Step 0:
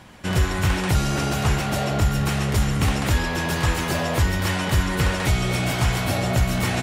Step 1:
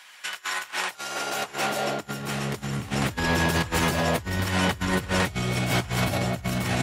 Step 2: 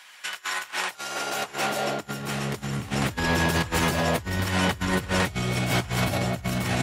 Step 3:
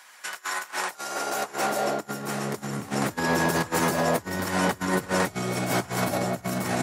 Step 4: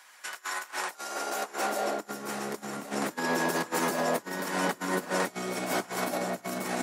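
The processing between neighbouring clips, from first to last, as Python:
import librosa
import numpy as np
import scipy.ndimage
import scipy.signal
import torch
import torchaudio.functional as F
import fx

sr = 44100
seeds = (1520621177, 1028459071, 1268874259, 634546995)

y1 = fx.over_compress(x, sr, threshold_db=-25.0, ratio=-0.5)
y1 = fx.filter_sweep_highpass(y1, sr, from_hz=1700.0, to_hz=72.0, start_s=0.16, end_s=3.29, q=0.82)
y2 = y1
y3 = scipy.signal.sosfilt(scipy.signal.butter(2, 200.0, 'highpass', fs=sr, output='sos'), y2)
y3 = fx.peak_eq(y3, sr, hz=3000.0, db=-10.0, octaves=1.2)
y3 = y3 * librosa.db_to_amplitude(2.5)
y4 = scipy.signal.sosfilt(scipy.signal.butter(4, 200.0, 'highpass', fs=sr, output='sos'), y3)
y4 = y4 + 10.0 ** (-14.0 / 20.0) * np.pad(y4, (int(1089 * sr / 1000.0), 0))[:len(y4)]
y4 = y4 * librosa.db_to_amplitude(-4.0)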